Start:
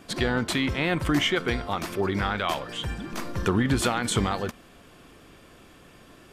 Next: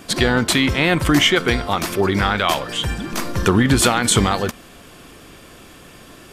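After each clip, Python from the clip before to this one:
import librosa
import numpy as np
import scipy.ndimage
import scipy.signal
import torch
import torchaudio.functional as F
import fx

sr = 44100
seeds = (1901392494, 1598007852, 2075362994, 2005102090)

y = fx.high_shelf(x, sr, hz=4100.0, db=6.0)
y = y * 10.0 ** (8.0 / 20.0)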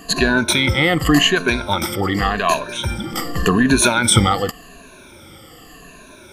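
y = fx.spec_ripple(x, sr, per_octave=1.5, drift_hz=-0.87, depth_db=19)
y = y * 10.0 ** (-3.0 / 20.0)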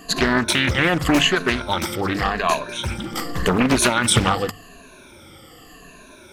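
y = fx.hum_notches(x, sr, base_hz=50, count=4)
y = fx.doppler_dist(y, sr, depth_ms=0.9)
y = y * 10.0 ** (-2.5 / 20.0)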